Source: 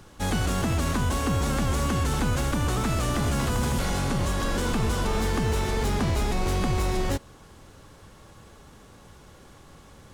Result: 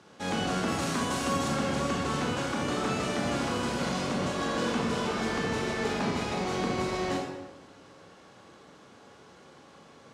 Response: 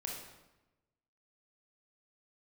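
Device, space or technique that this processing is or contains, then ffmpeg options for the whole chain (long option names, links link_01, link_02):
supermarket ceiling speaker: -filter_complex "[0:a]asettb=1/sr,asplit=3[link_01][link_02][link_03];[link_01]atrim=end=0.684[link_04];[link_02]atrim=start=0.68:end=1.48,asetpts=PTS-STARTPTS,afade=type=in:duration=0.004:curve=qsin,afade=type=out:start_time=0.796:duration=0.004:curve=qsin,highshelf=frequency=7500:gain=12[link_05];[link_03]atrim=start=1.476[link_06];[link_04][link_05]acrossfade=duration=0.004:curve1=hsin:curve2=qsin[link_07];[link_07][link_06]acrossfade=duration=0.004:curve1=qsin:curve2=hsin,highpass=210,lowpass=6200[link_08];[1:a]atrim=start_sample=2205[link_09];[link_08][link_09]afir=irnorm=-1:irlink=0"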